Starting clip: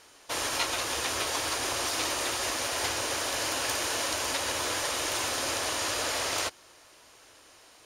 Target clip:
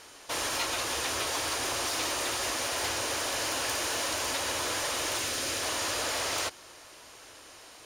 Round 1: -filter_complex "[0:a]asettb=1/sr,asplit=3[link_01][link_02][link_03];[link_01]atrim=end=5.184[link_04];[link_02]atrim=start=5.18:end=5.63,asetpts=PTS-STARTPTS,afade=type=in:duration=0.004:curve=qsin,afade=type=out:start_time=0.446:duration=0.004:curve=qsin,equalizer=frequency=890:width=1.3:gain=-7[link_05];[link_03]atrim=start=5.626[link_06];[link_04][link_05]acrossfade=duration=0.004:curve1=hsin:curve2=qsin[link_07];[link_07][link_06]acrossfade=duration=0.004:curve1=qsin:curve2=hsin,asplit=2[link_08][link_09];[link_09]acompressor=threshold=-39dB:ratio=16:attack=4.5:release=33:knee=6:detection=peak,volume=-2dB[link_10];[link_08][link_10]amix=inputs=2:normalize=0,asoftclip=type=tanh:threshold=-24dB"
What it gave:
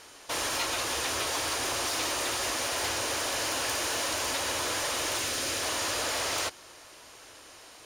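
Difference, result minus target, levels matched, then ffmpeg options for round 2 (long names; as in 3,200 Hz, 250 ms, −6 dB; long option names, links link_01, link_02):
downward compressor: peak gain reduction −7 dB
-filter_complex "[0:a]asettb=1/sr,asplit=3[link_01][link_02][link_03];[link_01]atrim=end=5.184[link_04];[link_02]atrim=start=5.18:end=5.63,asetpts=PTS-STARTPTS,afade=type=in:duration=0.004:curve=qsin,afade=type=out:start_time=0.446:duration=0.004:curve=qsin,equalizer=frequency=890:width=1.3:gain=-7[link_05];[link_03]atrim=start=5.626[link_06];[link_04][link_05]acrossfade=duration=0.004:curve1=hsin:curve2=qsin[link_07];[link_07][link_06]acrossfade=duration=0.004:curve1=qsin:curve2=hsin,asplit=2[link_08][link_09];[link_09]acompressor=threshold=-46.5dB:ratio=16:attack=4.5:release=33:knee=6:detection=peak,volume=-2dB[link_10];[link_08][link_10]amix=inputs=2:normalize=0,asoftclip=type=tanh:threshold=-24dB"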